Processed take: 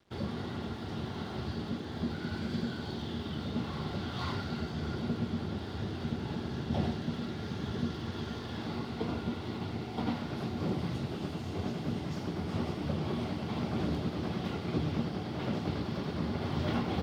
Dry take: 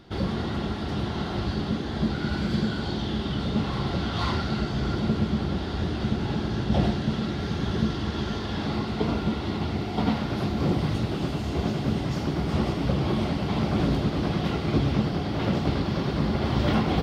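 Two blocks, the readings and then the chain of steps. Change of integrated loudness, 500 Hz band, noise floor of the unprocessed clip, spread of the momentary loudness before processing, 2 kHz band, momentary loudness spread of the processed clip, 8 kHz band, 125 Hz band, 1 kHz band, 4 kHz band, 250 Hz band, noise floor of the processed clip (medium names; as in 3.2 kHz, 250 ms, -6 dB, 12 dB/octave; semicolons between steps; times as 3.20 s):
-9.0 dB, -8.5 dB, -31 dBFS, 5 LU, -8.5 dB, 5 LU, no reading, -9.0 dB, -8.5 dB, -9.0 dB, -8.5 dB, -40 dBFS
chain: frequency shift +18 Hz; crossover distortion -50.5 dBFS; trim -8.5 dB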